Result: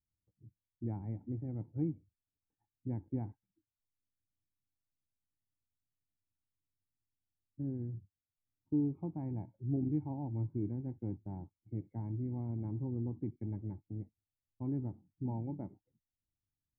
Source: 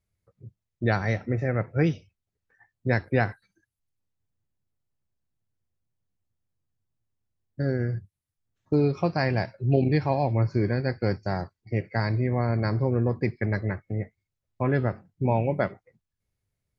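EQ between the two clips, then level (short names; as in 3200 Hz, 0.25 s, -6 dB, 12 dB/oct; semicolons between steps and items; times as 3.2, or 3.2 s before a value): vocal tract filter u; air absorption 280 m; bell 490 Hz -13 dB 2.4 oct; +4.0 dB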